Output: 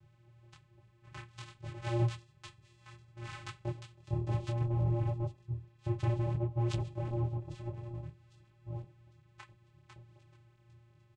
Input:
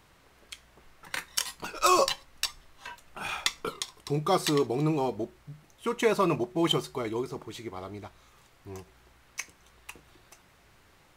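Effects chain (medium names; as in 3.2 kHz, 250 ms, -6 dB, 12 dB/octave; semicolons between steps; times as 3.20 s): octave divider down 2 oct, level +4 dB; bass shelf 180 Hz +5 dB; static phaser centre 2.6 kHz, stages 4; saturation -22.5 dBFS, distortion -10 dB; vocoder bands 4, square 117 Hz; doubling 13 ms -12 dB; on a send: feedback echo behind a high-pass 802 ms, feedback 38%, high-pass 3.2 kHz, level -16 dB; on the sum: detune thickener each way 20 cents; trim +5.5 dB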